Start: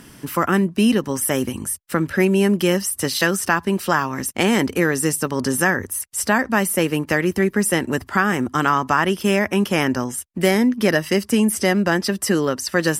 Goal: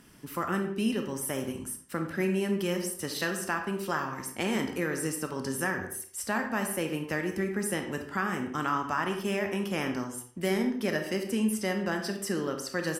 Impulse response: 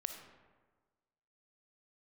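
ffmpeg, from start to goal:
-filter_complex "[0:a]asplit=2[a][b];[b]adelay=74,lowpass=f=2.3k:p=1,volume=-13.5dB,asplit=2[c][d];[d]adelay=74,lowpass=f=2.3k:p=1,volume=0.43,asplit=2[e][f];[f]adelay=74,lowpass=f=2.3k:p=1,volume=0.43,asplit=2[g][h];[h]adelay=74,lowpass=f=2.3k:p=1,volume=0.43[i];[a][c][e][g][i]amix=inputs=5:normalize=0[j];[1:a]atrim=start_sample=2205,afade=t=out:st=0.45:d=0.01,atrim=end_sample=20286,asetrate=83790,aresample=44100[k];[j][k]afir=irnorm=-1:irlink=0,volume=-5dB"

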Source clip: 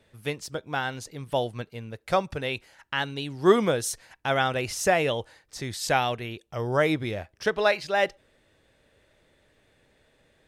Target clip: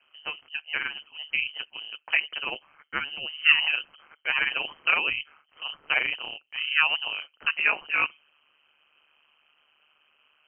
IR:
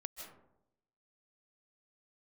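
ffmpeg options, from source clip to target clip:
-af "lowpass=f=2.6k:t=q:w=0.5098,lowpass=f=2.6k:t=q:w=0.6013,lowpass=f=2.6k:t=q:w=0.9,lowpass=f=2.6k:t=q:w=2.563,afreqshift=-3100,tremolo=f=150:d=0.889,volume=2.5dB"

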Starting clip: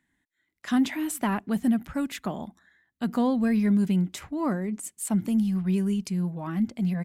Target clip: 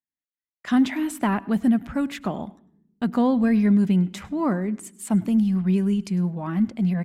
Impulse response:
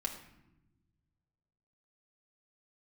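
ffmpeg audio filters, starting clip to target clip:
-filter_complex "[0:a]agate=range=-33dB:threshold=-48dB:ratio=16:detection=peak,highshelf=f=5.3k:g=-10,asplit=2[a][b];[1:a]atrim=start_sample=2205,asetrate=57330,aresample=44100,adelay=101[c];[b][c]afir=irnorm=-1:irlink=0,volume=-19.5dB[d];[a][d]amix=inputs=2:normalize=0,volume=4dB"

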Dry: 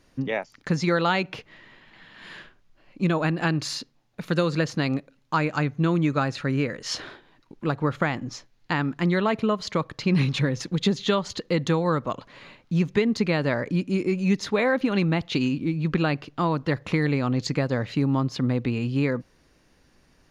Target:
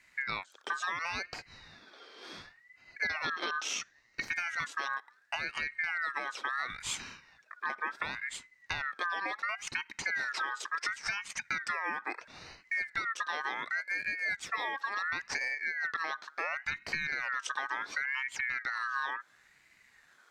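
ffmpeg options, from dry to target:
-filter_complex "[0:a]asettb=1/sr,asplit=3[a][b][c];[a]atrim=end=3.024[d];[b]atrim=start=3.02:end=4.28,asetpts=PTS-STARTPTS,afade=t=in:d=0.004:c=qsin,afade=t=out:st=1.256:d=0.004:c=qsin,equalizer=f=125:t=o:w=1:g=9,equalizer=f=2k:t=o:w=1:g=11,equalizer=f=4k:t=o:w=1:g=10,equalizer=f=8k:t=o:w=1:g=-8[e];[c]atrim=start=4.276[f];[d][e]acrossfade=d=0.004:c1=hsin:c2=qsin[g];[g][f]acrossfade=d=0.004:c1=qsin:c2=hsin,acompressor=threshold=-29dB:ratio=6,asuperstop=centerf=1400:order=8:qfactor=2.3,aeval=exprs='val(0)*sin(2*PI*1700*n/s+1700*0.2/0.71*sin(2*PI*0.71*n/s))':c=same"

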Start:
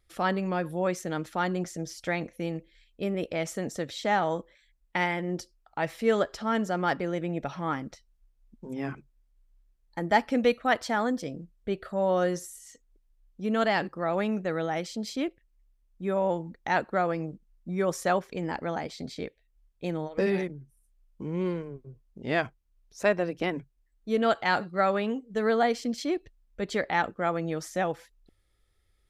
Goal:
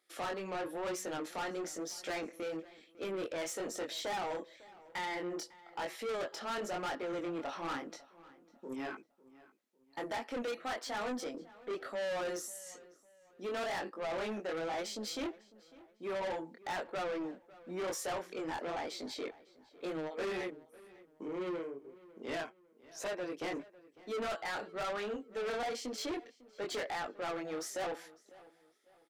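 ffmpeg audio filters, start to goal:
-filter_complex "[0:a]highpass=f=290:w=0.5412,highpass=f=290:w=1.3066,alimiter=limit=-17dB:level=0:latency=1:release=407,flanger=delay=19:depth=6.6:speed=1,asoftclip=type=tanh:threshold=-38dB,asplit=2[a][b];[b]adelay=551,lowpass=f=3.6k:p=1,volume=-20dB,asplit=2[c][d];[d]adelay=551,lowpass=f=3.6k:p=1,volume=0.37,asplit=2[e][f];[f]adelay=551,lowpass=f=3.6k:p=1,volume=0.37[g];[a][c][e][g]amix=inputs=4:normalize=0,volume=3.5dB"

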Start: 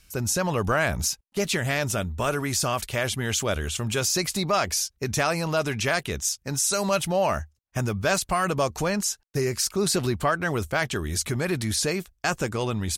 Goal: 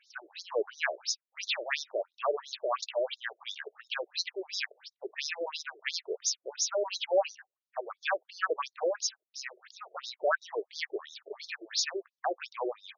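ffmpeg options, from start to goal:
-af "afftfilt=real='re*between(b*sr/1024,470*pow(5000/470,0.5+0.5*sin(2*PI*2.9*pts/sr))/1.41,470*pow(5000/470,0.5+0.5*sin(2*PI*2.9*pts/sr))*1.41)':imag='im*between(b*sr/1024,470*pow(5000/470,0.5+0.5*sin(2*PI*2.9*pts/sr))/1.41,470*pow(5000/470,0.5+0.5*sin(2*PI*2.9*pts/sr))*1.41)':win_size=1024:overlap=0.75"

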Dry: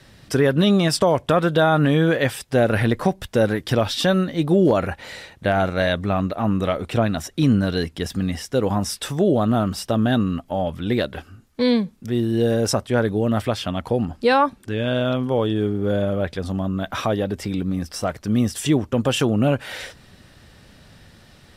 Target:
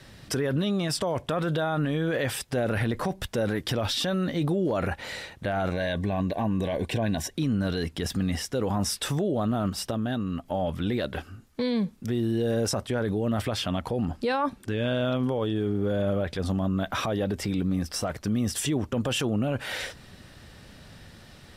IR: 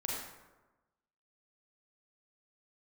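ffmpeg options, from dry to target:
-filter_complex "[0:a]asettb=1/sr,asplit=3[a][b][c];[a]atrim=end=5.714[d];[b]atrim=start=5.71:end=7.35,asetpts=PTS-STARTPTS,afade=t=in:d=0.004:c=qsin,afade=t=out:st=1.636:d=0.004:c=qsin,asuperstop=centerf=1300:order=12:qfactor=4.3[e];[c]atrim=start=7.346[f];[d][e]acrossfade=d=0.004:c1=hsin:c2=qsin[g];[g][f]acrossfade=d=0.004:c1=qsin:c2=hsin,asplit=3[h][i][j];[h]afade=t=out:st=9.69:d=0.02[k];[i]acompressor=threshold=-25dB:ratio=12,afade=t=in:st=9.69:d=0.02,afade=t=out:st=10.44:d=0.02[l];[j]afade=t=in:st=10.44:d=0.02[m];[k][l][m]amix=inputs=3:normalize=0,alimiter=limit=-19dB:level=0:latency=1:release=30"

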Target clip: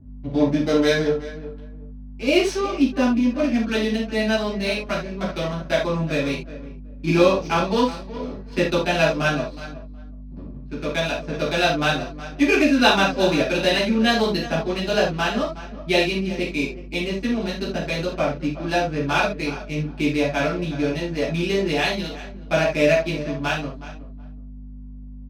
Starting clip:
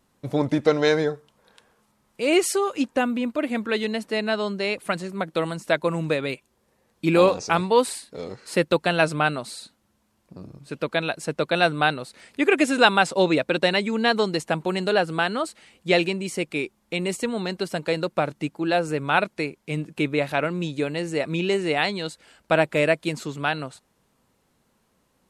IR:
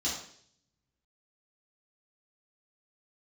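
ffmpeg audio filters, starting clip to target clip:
-filter_complex "[0:a]asplit=2[a][b];[b]adelay=368,lowpass=f=4.8k:p=1,volume=-14.5dB,asplit=2[c][d];[d]adelay=368,lowpass=f=4.8k:p=1,volume=0.22[e];[a][c][e]amix=inputs=3:normalize=0,aeval=exprs='val(0)+0.0112*(sin(2*PI*50*n/s)+sin(2*PI*2*50*n/s)/2+sin(2*PI*3*50*n/s)/3+sin(2*PI*4*50*n/s)/4+sin(2*PI*5*50*n/s)/5)':c=same,adynamicsmooth=sensitivity=6:basefreq=720[f];[1:a]atrim=start_sample=2205,atrim=end_sample=3528,asetrate=37926,aresample=44100[g];[f][g]afir=irnorm=-1:irlink=0,volume=-6dB"

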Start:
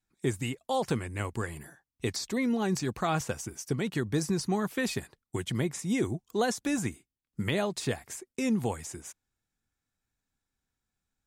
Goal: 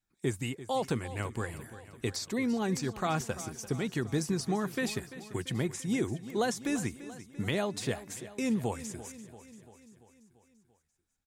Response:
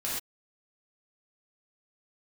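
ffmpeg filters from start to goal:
-af "aecho=1:1:341|682|1023|1364|1705|2046:0.178|0.107|0.064|0.0384|0.023|0.0138,volume=-2dB"

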